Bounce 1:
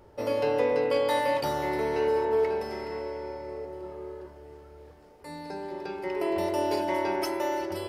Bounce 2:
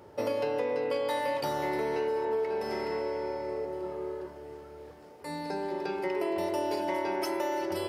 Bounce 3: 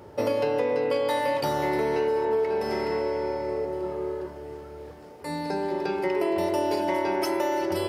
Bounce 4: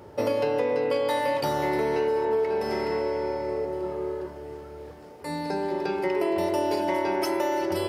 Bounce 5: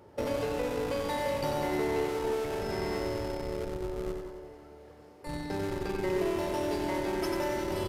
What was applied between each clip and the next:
high-pass 110 Hz 12 dB/octave; compression, threshold -31 dBFS, peak gain reduction 10 dB; trim +3.5 dB
bass shelf 210 Hz +4.5 dB; trim +4.5 dB
no audible change
in parallel at -4 dB: Schmitt trigger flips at -24.5 dBFS; on the sum: feedback delay 92 ms, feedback 57%, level -5.5 dB; resampled via 32 kHz; trim -8.5 dB

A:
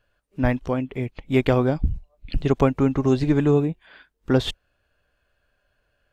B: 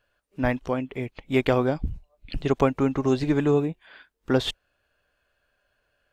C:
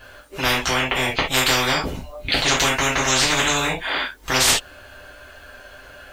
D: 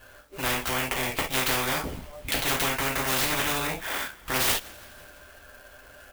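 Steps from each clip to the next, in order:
bass shelf 230 Hz -7.5 dB
gated-style reverb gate 100 ms falling, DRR -6 dB; spectrum-flattening compressor 10:1; trim -1.5 dB
frequency-shifting echo 167 ms, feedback 62%, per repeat -89 Hz, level -22 dB; sampling jitter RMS 0.042 ms; trim -7 dB

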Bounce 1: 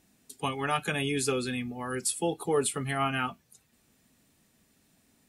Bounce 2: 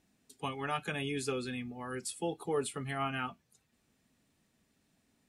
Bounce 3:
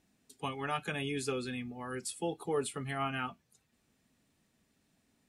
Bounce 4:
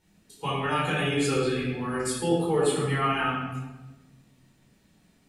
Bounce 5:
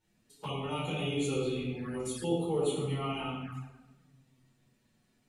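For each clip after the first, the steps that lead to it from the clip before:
treble shelf 9.4 kHz -10.5 dB; trim -6 dB
no audible change
simulated room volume 670 m³, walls mixed, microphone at 4.5 m
touch-sensitive flanger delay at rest 8.9 ms, full sweep at -25.5 dBFS; trim -5.5 dB

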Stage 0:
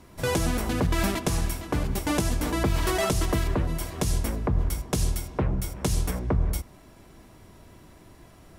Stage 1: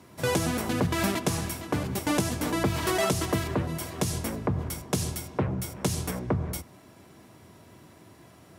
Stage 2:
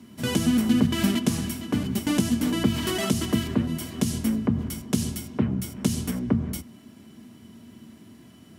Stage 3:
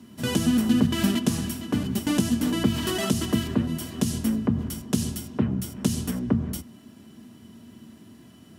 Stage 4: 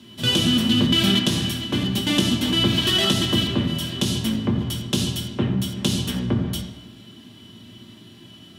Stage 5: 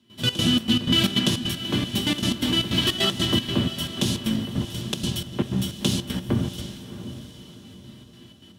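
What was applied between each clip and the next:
high-pass 89 Hz 24 dB/octave
peaking EQ 810 Hz -6.5 dB 1.6 oct; band-stop 520 Hz, Q 12; small resonant body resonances 230/3000 Hz, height 17 dB, ringing for 100 ms
band-stop 2.2 kHz, Q 12
peaking EQ 3.4 kHz +15 dB 0.84 oct; on a send at -1 dB: reverberation RT60 1.1 s, pre-delay 4 ms
trance gate ".xx.xx.x" 155 bpm -12 dB; in parallel at -5 dB: crossover distortion -35 dBFS; on the sum: echo that smears into a reverb 683 ms, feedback 42%, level -12 dB; trim -4.5 dB

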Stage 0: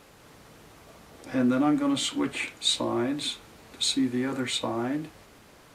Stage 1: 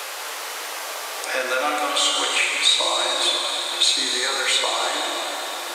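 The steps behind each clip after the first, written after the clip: Bessel high-pass 750 Hz, order 8; plate-style reverb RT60 2.8 s, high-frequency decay 0.85×, DRR -1 dB; three bands compressed up and down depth 70%; trim +9 dB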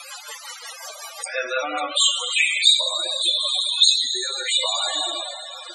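treble shelf 3.4 kHz +10.5 dB; loudest bins only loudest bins 32; rotary cabinet horn 5.5 Hz, later 0.8 Hz, at 1.59 s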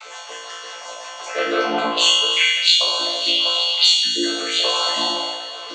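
vocoder on a held chord minor triad, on D3; on a send: flutter echo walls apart 3 m, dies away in 0.86 s; on the sum: trim -1.5 dB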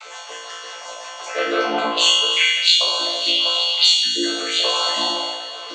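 high-pass 200 Hz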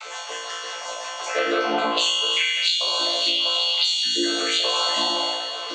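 compression 10:1, threshold -20 dBFS, peak gain reduction 10.5 dB; trim +2 dB

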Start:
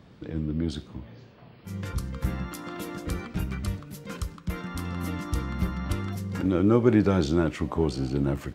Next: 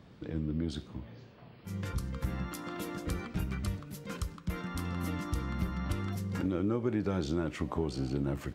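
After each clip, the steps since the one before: compression 4:1, threshold -25 dBFS, peak gain reduction 10 dB; trim -3 dB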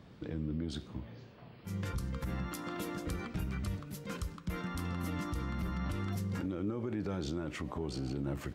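peak limiter -27.5 dBFS, peak gain reduction 9 dB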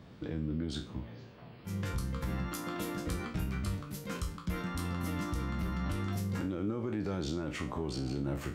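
spectral sustain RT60 0.34 s; trim +1 dB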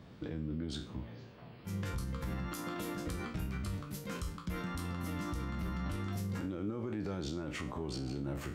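peak limiter -28.5 dBFS, peak gain reduction 4.5 dB; trim -1 dB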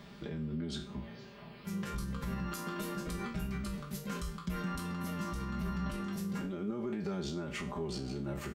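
comb 5 ms, depth 85%; tape noise reduction on one side only encoder only; trim -1 dB

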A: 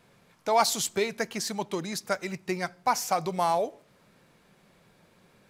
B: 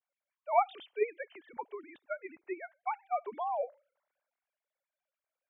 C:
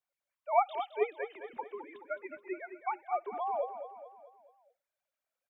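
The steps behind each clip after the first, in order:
formants replaced by sine waves; three bands expanded up and down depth 40%; trim -8.5 dB
feedback delay 214 ms, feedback 49%, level -10 dB

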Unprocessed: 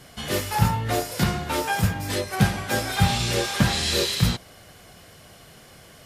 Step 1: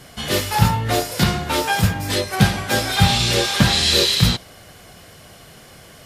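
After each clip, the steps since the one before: dynamic bell 3.8 kHz, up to +5 dB, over -38 dBFS, Q 1.4; trim +4.5 dB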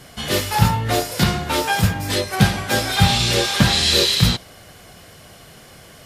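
no audible change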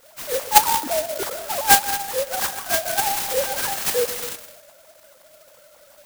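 formants replaced by sine waves; reverberation RT60 0.70 s, pre-delay 90 ms, DRR 11 dB; sampling jitter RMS 0.13 ms; trim -4 dB

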